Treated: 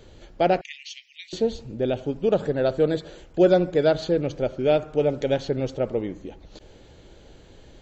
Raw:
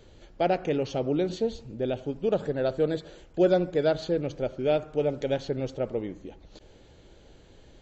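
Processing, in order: 0.61–1.33 s: steep high-pass 1.9 kHz 96 dB/octave; trim +4.5 dB

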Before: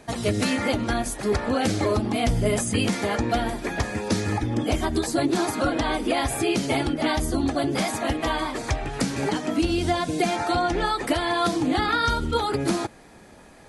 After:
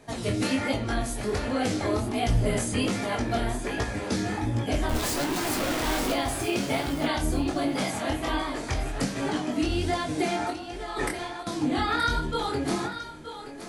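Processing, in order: 4.89–6.12 s: one-bit comparator; 10.50–11.47 s: compressor with a negative ratio -30 dBFS, ratio -0.5; thinning echo 924 ms, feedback 16%, high-pass 300 Hz, level -10 dB; simulated room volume 46 m³, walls mixed, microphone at 0.32 m; chorus 1.3 Hz, delay 18 ms, depth 7.9 ms; trim -1.5 dB

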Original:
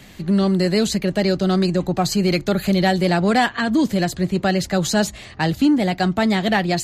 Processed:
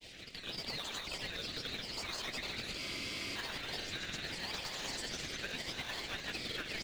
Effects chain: inverse Chebyshev high-pass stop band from 620 Hz, stop band 60 dB; valve stage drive 35 dB, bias 0.45; low-pass 5.2 kHz 12 dB/octave; echo with a slow build-up 103 ms, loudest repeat 8, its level -13.5 dB; harmonic-percussive split harmonic -10 dB; on a send: loudspeakers at several distances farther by 48 m -10 dB, 62 m -5 dB; on the sum: granulator, pitch spread up and down by 3 st; in parallel at -5 dB: decimation with a swept rate 32×, swing 100% 0.8 Hz; on the sum: compression 3:1, threshold -44 dBFS, peak gain reduction 7 dB; spectral freeze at 2.82 s, 0.54 s; trim +5 dB

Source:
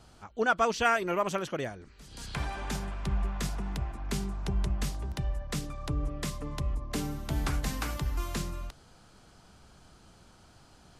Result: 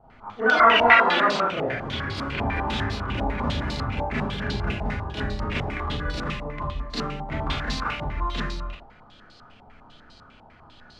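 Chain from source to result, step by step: ever faster or slower copies 237 ms, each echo +6 st, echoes 3; Schroeder reverb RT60 0.46 s, combs from 26 ms, DRR -8 dB; step-sequenced low-pass 10 Hz 820–4300 Hz; trim -4.5 dB

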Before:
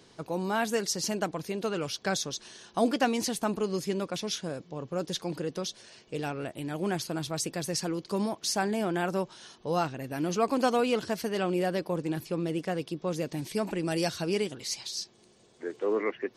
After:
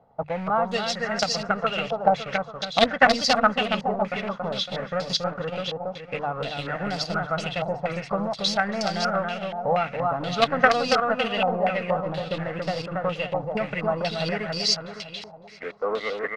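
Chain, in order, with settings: transient shaper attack +6 dB, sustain -6 dB; comb 1.5 ms, depth 69%; in parallel at -7 dB: companded quantiser 2-bit; on the sum: peaking EQ 370 Hz -8.5 dB 0.21 oct; hum notches 50/100/150 Hz; on a send: feedback delay 279 ms, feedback 49%, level -3.5 dB; on the sum: step-sequenced low-pass 4.2 Hz 850–4800 Hz; trim -4.5 dB

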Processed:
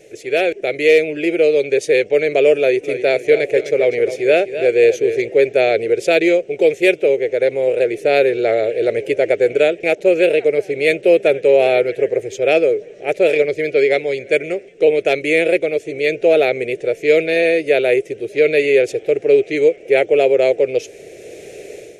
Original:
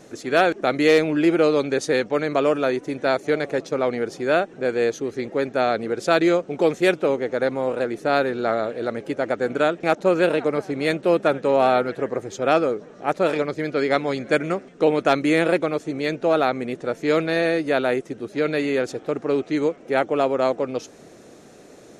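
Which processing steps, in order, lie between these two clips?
FFT filter 110 Hz 0 dB, 250 Hz -12 dB, 410 Hz +9 dB, 630 Hz +3 dB, 1.1 kHz -21 dB, 2.3 kHz +11 dB, 4.1 kHz -1 dB, 6.4 kHz +1 dB, 10 kHz +4 dB; level rider gain up to 10.5 dB; 2.58–5.22 s: modulated delay 257 ms, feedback 35%, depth 64 cents, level -11.5 dB; trim -1.5 dB

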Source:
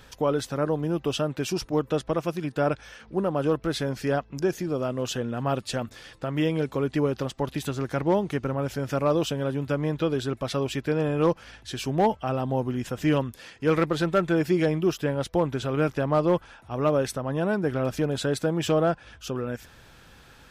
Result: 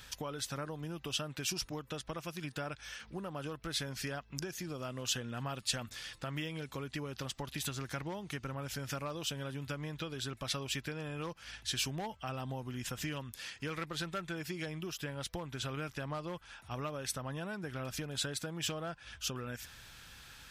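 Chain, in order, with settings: compression, threshold -29 dBFS, peak gain reduction 12 dB; amplifier tone stack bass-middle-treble 5-5-5; trim +9.5 dB

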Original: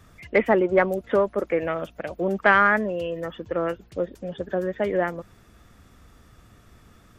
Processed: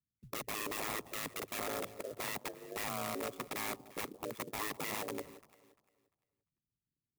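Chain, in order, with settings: resonances exaggerated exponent 3; 2.17–4.54 s: high-pass 180 Hz 12 dB/octave; gate -45 dBFS, range -32 dB; elliptic band-stop 470–4000 Hz, stop band 40 dB; peak limiter -20 dBFS, peak gain reduction 8 dB; integer overflow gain 28.5 dB; ring modulator 53 Hz; comb of notches 1.5 kHz; echo whose repeats swap between lows and highs 173 ms, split 830 Hz, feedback 50%, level -13.5 dB; sampling jitter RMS 0.054 ms; trim -1 dB

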